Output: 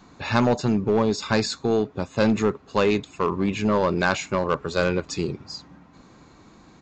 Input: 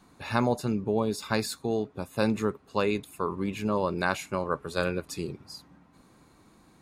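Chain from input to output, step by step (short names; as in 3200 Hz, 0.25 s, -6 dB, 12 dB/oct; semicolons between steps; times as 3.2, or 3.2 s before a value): in parallel at -5.5 dB: wavefolder -23.5 dBFS; on the sum: downsampling 16000 Hz; gain +4 dB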